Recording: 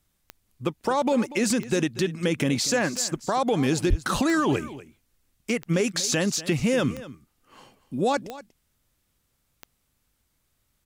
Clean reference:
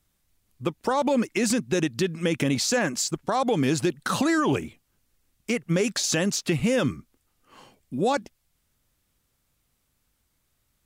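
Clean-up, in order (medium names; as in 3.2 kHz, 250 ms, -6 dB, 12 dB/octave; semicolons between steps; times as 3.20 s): clip repair -13 dBFS; de-click; de-plosive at 3.89 s; inverse comb 240 ms -16.5 dB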